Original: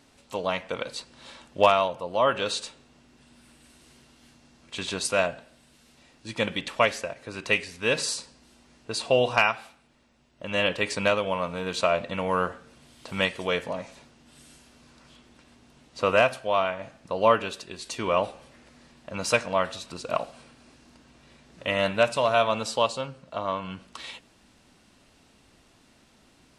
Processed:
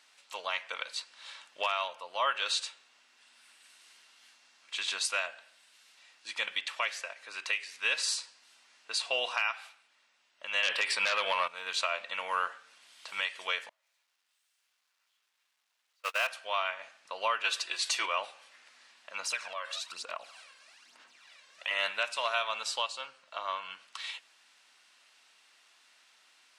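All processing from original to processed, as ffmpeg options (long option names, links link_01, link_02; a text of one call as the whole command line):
ffmpeg -i in.wav -filter_complex "[0:a]asettb=1/sr,asplit=3[link_01][link_02][link_03];[link_01]atrim=end=10.634[link_04];[link_02]atrim=start=10.63:end=11.48,asetpts=PTS-STARTPTS,afade=type=in:duration=0.004:curve=qsin,afade=type=out:start_time=0.846:duration=0.004:curve=qsin,equalizer=frequency=6800:width=2.9:gain=-7,bandreject=frequency=6400:width=7.3,aeval=exprs='0.422*sin(PI/2*2.82*val(0)/0.422)':channel_layout=same[link_05];[link_03]atrim=start=11.476[link_06];[link_04][link_05]acrossfade=duration=0.004:curve1=hsin:curve2=qsin[link_07];[link_07][link_06]acrossfade=duration=0.004:curve1=qsin:curve2=hsin,asettb=1/sr,asplit=3[link_08][link_09][link_10];[link_08]atrim=end=13.694[link_11];[link_09]atrim=start=13.69:end=16.27,asetpts=PTS-STARTPTS,afade=type=in:duration=0.004:curve=qsin,afade=type=out:start_time=2.576:duration=0.004:curve=qsin,aeval=exprs='val(0)+0.5*0.0841*sgn(val(0))':channel_layout=same,agate=range=-47dB:threshold=-18dB:ratio=16:release=100:detection=peak,equalizer=frequency=130:width_type=o:width=2.1:gain=-7[link_12];[link_10]atrim=start=16.266[link_13];[link_11][link_12]acrossfade=duration=0.004:curve1=hsin:curve2=qsin[link_14];[link_14][link_13]acrossfade=duration=0.004:curve1=qsin:curve2=hsin,asettb=1/sr,asplit=3[link_15][link_16][link_17];[link_15]atrim=end=17.444[link_18];[link_16]atrim=start=17.44:end=18.06,asetpts=PTS-STARTPTS,afade=type=in:duration=0.004:curve=qsin,afade=type=out:start_time=0.616:duration=0.004:curve=qsin,highpass=280,aecho=1:1:6:0.55,atrim=end_sample=27342,acontrast=86[link_19];[link_17]atrim=start=18.056[link_20];[link_18][link_19]acrossfade=duration=0.004:curve1=hsin:curve2=qsin[link_21];[link_21][link_20]acrossfade=duration=0.004:curve1=qsin:curve2=hsin,asettb=1/sr,asplit=3[link_22][link_23][link_24];[link_22]atrim=end=19.204[link_25];[link_23]atrim=start=19.2:end=21.71,asetpts=PTS-STARTPTS,afade=type=in:duration=0.004:curve=qsin,afade=type=out:start_time=2.506:duration=0.004:curve=qsin,aphaser=in_gain=1:out_gain=1:delay=1.9:decay=0.59:speed=1.1:type=sinusoidal,acompressor=threshold=-30dB:ratio=3:attack=3.2:release=140:knee=1:detection=peak[link_26];[link_24]atrim=start=21.706[link_27];[link_25][link_26]acrossfade=duration=0.004:curve1=hsin:curve2=qsin[link_28];[link_28][link_27]acrossfade=duration=0.004:curve1=qsin:curve2=hsin,highpass=1400,highshelf=frequency=7200:gain=-7.5,alimiter=limit=-20.5dB:level=0:latency=1:release=256,volume=2dB" out.wav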